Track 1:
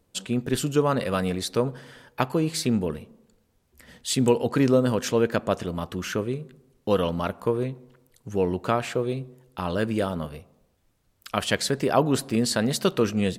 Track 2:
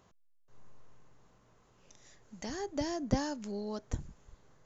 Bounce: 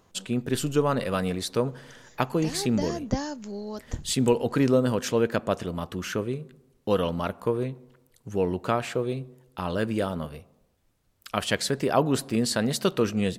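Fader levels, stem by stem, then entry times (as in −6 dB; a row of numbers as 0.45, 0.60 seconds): −1.5, +3.0 decibels; 0.00, 0.00 seconds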